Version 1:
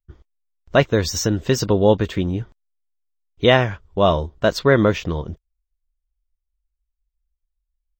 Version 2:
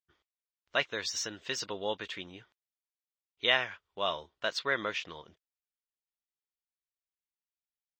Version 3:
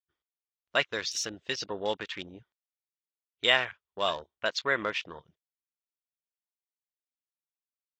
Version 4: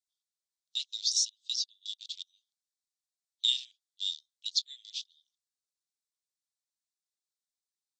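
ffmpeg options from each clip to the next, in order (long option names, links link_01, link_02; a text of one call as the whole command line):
ffmpeg -i in.wav -af "bandpass=frequency=2900:width_type=q:width=0.9:csg=0,volume=-5dB" out.wav
ffmpeg -i in.wav -af "afwtdn=0.00794,volume=3dB" out.wav
ffmpeg -i in.wav -af "asuperpass=centerf=6000:order=12:qfactor=1,volume=5.5dB" out.wav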